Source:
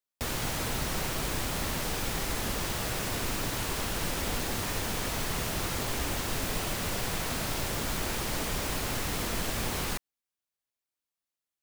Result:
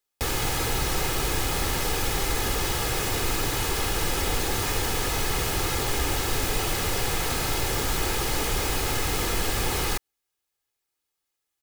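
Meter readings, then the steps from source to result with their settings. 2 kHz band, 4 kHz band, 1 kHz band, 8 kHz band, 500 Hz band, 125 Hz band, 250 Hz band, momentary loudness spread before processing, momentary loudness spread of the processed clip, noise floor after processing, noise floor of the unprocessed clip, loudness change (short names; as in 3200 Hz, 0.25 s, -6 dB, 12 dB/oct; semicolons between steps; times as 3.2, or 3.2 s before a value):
+5.5 dB, +6.0 dB, +6.0 dB, +5.5 dB, +6.0 dB, +5.5 dB, +3.0 dB, 0 LU, 0 LU, -82 dBFS, under -85 dBFS, +5.5 dB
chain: comb 2.4 ms, depth 48%; in parallel at -2.5 dB: limiter -29.5 dBFS, peak gain reduction 12.5 dB; on the sum: gain +2.5 dB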